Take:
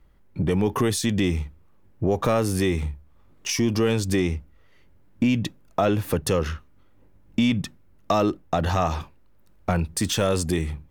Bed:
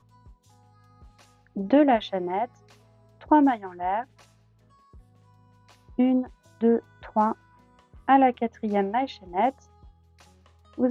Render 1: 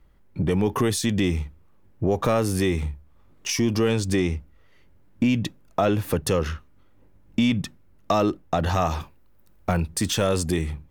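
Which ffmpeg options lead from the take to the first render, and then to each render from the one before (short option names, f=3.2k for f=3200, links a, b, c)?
-filter_complex "[0:a]asettb=1/sr,asplit=3[a][b][c];[a]atrim=end=3.884[d];[b]atrim=start=3.88:end=4.33,asetpts=PTS-STARTPTS,afade=t=in:d=0.004:c=qsin,afade=t=out:st=0.446:d=0.004:c=qsin,equalizer=f=13k:t=o:w=0.23:g=-10[e];[c]atrim=start=4.326[f];[d][e]acrossfade=d=0.004:c1=hsin:c2=qsin[g];[g][f]acrossfade=d=0.004:c1=qsin:c2=hsin,asettb=1/sr,asplit=3[h][i][j];[h]atrim=end=8.744[k];[i]atrim=start=8.74:end=9.86,asetpts=PTS-STARTPTS,afade=t=in:d=0.004:c=qsin,afade=t=out:st=1.116:d=0.004:c=qsin,highshelf=f=12k:g=9.5[l];[j]atrim=start=9.856[m];[k][l]acrossfade=d=0.004:c1=hsin:c2=qsin[n];[n][m]acrossfade=d=0.004:c1=qsin:c2=hsin"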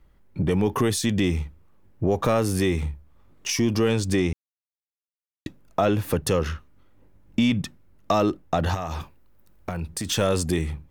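-filter_complex "[0:a]asettb=1/sr,asplit=3[a][b][c];[a]atrim=end=8.744[d];[b]atrim=start=8.74:end=10.1,asetpts=PTS-STARTPTS,afade=t=in:d=0.004:c=qsin,afade=t=out:st=1.356:d=0.004:c=qsin,acompressor=threshold=-25dB:ratio=6:attack=3.2:release=140:knee=1:detection=peak[e];[c]atrim=start=10.096[f];[d][e]acrossfade=d=0.004:c1=hsin:c2=qsin[g];[g][f]acrossfade=d=0.004:c1=qsin:c2=hsin,asplit=3[h][i][j];[h]atrim=end=4.33,asetpts=PTS-STARTPTS,afade=t=out:st=4.326:d=0.004:c=hsin[k];[i]atrim=start=4.33:end=5.46,asetpts=PTS-STARTPTS,volume=0[l];[j]atrim=start=5.46,asetpts=PTS-STARTPTS,afade=t=in:d=0.004:c=hsin[m];[k][l][m]concat=n=3:v=0:a=1"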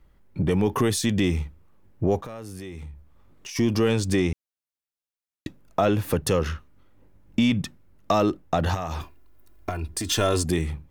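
-filter_complex "[0:a]asplit=3[a][b][c];[a]afade=t=out:st=2.2:d=0.02[d];[b]acompressor=threshold=-37dB:ratio=4:attack=3.2:release=140:knee=1:detection=peak,afade=t=in:st=2.2:d=0.02,afade=t=out:st=3.55:d=0.02[e];[c]afade=t=in:st=3.55:d=0.02[f];[d][e][f]amix=inputs=3:normalize=0,asettb=1/sr,asplit=3[g][h][i];[g]atrim=end=9.014[j];[h]atrim=start=9.01:end=10.44,asetpts=PTS-STARTPTS,afade=t=in:d=0.004:c=qsin,afade=t=out:st=1.426:d=0.004:c=qsin,aecho=1:1:2.9:0.65,atrim=end_sample=63063[k];[i]atrim=start=10.436[l];[j][k]acrossfade=d=0.004:c1=hsin:c2=qsin[m];[m][l]acrossfade=d=0.004:c1=qsin:c2=hsin"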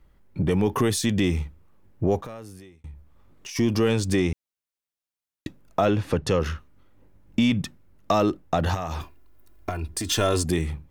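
-filter_complex "[0:a]asplit=3[a][b][c];[a]afade=t=out:st=5.9:d=0.02[d];[b]lowpass=6k,afade=t=in:st=5.9:d=0.02,afade=t=out:st=6.39:d=0.02[e];[c]afade=t=in:st=6.39:d=0.02[f];[d][e][f]amix=inputs=3:normalize=0,asplit=2[g][h];[g]atrim=end=2.84,asetpts=PTS-STARTPTS,afade=t=out:st=2.29:d=0.55[i];[h]atrim=start=2.84,asetpts=PTS-STARTPTS,afade=t=in:d=0.004:c=hsin[j];[i][j]concat=n=2:v=0:a=1"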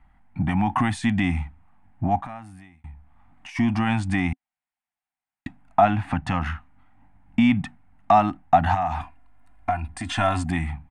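-filter_complex "[0:a]acrossover=split=8900[a][b];[b]acompressor=threshold=-48dB:ratio=4:attack=1:release=60[c];[a][c]amix=inputs=2:normalize=0,firequalizer=gain_entry='entry(170,0);entry(260,4);entry(440,-30);entry(730,13);entry(1100,3);entry(2000,6);entry(3500,-6);entry(5700,-14);entry(9000,-4);entry(13000,-26)':delay=0.05:min_phase=1"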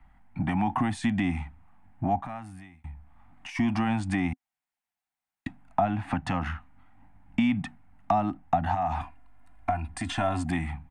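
-filter_complex "[0:a]acrossover=split=220|790[a][b][c];[a]acompressor=threshold=-32dB:ratio=4[d];[b]acompressor=threshold=-25dB:ratio=4[e];[c]acompressor=threshold=-34dB:ratio=4[f];[d][e][f]amix=inputs=3:normalize=0"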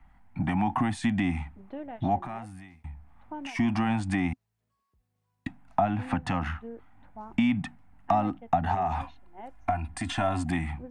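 -filter_complex "[1:a]volume=-21dB[a];[0:a][a]amix=inputs=2:normalize=0"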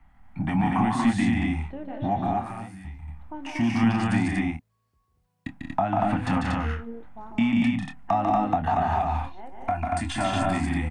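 -filter_complex "[0:a]asplit=2[a][b];[b]adelay=26,volume=-9.5dB[c];[a][c]amix=inputs=2:normalize=0,aecho=1:1:145.8|183.7|236.2:0.631|0.501|0.794"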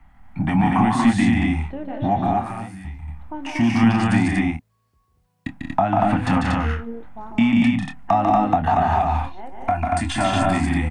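-af "volume=5.5dB"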